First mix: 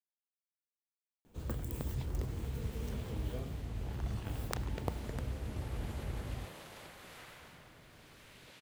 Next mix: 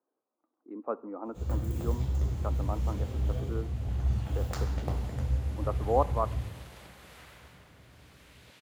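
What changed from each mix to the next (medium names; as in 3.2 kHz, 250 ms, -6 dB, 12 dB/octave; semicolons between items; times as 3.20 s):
speech: unmuted; first sound -4.0 dB; reverb: on, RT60 1.1 s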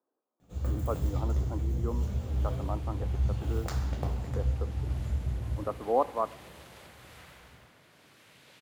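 first sound: entry -0.85 s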